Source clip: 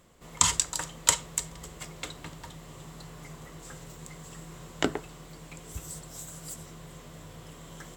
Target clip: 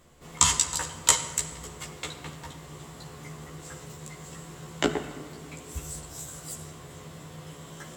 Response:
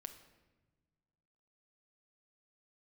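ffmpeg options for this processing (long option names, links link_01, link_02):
-filter_complex "[0:a]asplit=2[link_01][link_02];[1:a]atrim=start_sample=2205,asetrate=22491,aresample=44100,adelay=14[link_03];[link_02][link_03]afir=irnorm=-1:irlink=0,volume=0.5dB[link_04];[link_01][link_04]amix=inputs=2:normalize=0"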